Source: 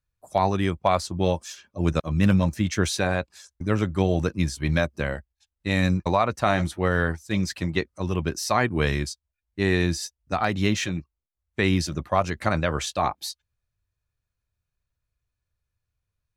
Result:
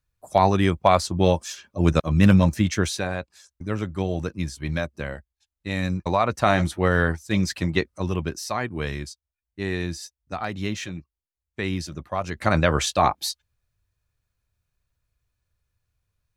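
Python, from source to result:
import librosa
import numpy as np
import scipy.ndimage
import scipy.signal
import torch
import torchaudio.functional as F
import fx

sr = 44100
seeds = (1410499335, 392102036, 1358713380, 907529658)

y = fx.gain(x, sr, db=fx.line((2.57, 4.0), (3.09, -4.0), (5.89, -4.0), (6.35, 2.5), (7.96, 2.5), (8.57, -5.5), (12.18, -5.5), (12.58, 5.0)))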